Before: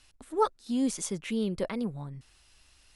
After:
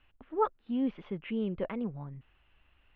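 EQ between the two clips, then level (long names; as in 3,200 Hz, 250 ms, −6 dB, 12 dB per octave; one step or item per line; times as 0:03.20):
Chebyshev low-pass filter 3,000 Hz, order 4
high-frequency loss of the air 180 metres
−1.5 dB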